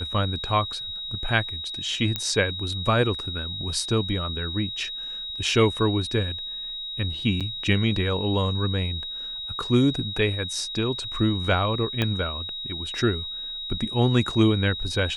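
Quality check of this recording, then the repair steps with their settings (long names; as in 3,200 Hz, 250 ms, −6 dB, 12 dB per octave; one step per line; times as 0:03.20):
whistle 3,800 Hz −31 dBFS
0:02.16: click −10 dBFS
0:07.40–0:07.41: drop-out 6.8 ms
0:12.02: click −10 dBFS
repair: click removal
notch filter 3,800 Hz, Q 30
repair the gap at 0:07.40, 6.8 ms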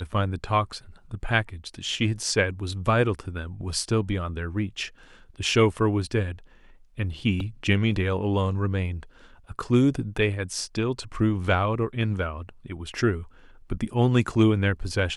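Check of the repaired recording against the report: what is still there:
0:12.02: click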